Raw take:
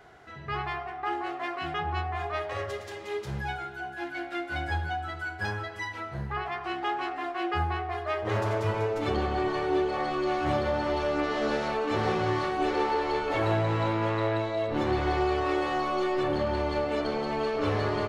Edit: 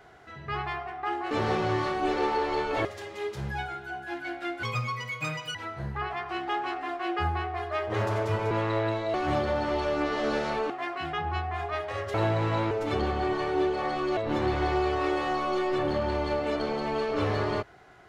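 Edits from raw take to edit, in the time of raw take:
1.31–2.75 s: swap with 11.88–13.42 s
4.53–5.90 s: speed 149%
8.86–10.32 s: swap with 13.99–14.62 s

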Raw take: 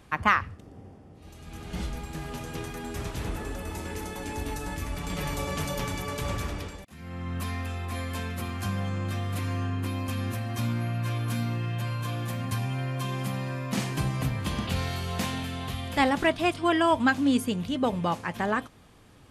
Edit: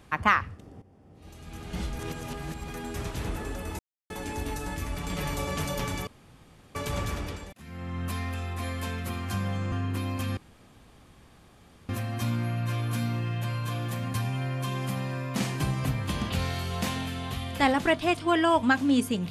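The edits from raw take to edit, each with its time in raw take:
0.82–1.29 s: fade in, from -14 dB
1.99–2.68 s: reverse
3.79–4.10 s: mute
6.07 s: insert room tone 0.68 s
9.04–9.61 s: delete
10.26 s: insert room tone 1.52 s

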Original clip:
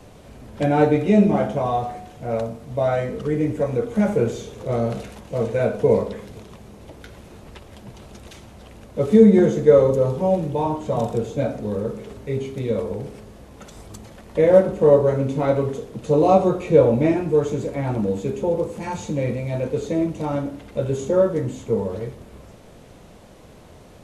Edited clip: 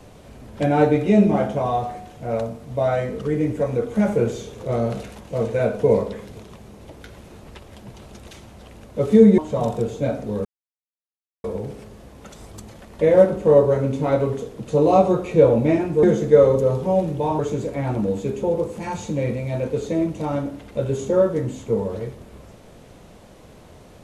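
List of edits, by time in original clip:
9.38–10.74 s: move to 17.39 s
11.81–12.80 s: mute

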